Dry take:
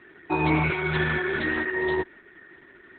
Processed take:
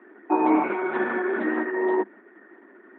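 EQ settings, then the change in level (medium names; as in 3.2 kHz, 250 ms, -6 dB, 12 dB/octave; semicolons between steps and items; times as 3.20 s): rippled Chebyshev high-pass 200 Hz, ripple 3 dB; low-pass 1.2 kHz 12 dB/octave; distance through air 130 m; +6.5 dB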